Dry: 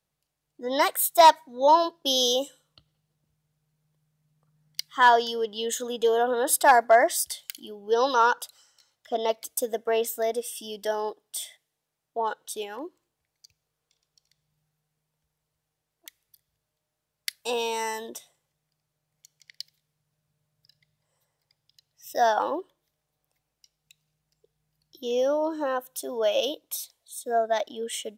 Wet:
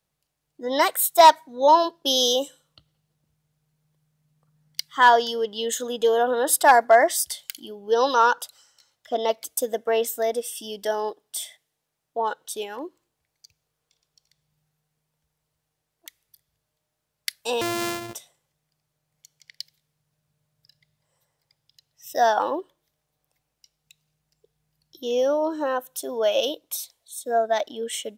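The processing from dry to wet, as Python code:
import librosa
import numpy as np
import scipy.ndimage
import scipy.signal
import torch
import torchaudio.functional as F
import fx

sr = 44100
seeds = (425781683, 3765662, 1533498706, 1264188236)

y = fx.sample_sort(x, sr, block=128, at=(17.61, 18.15))
y = y * librosa.db_to_amplitude(2.5)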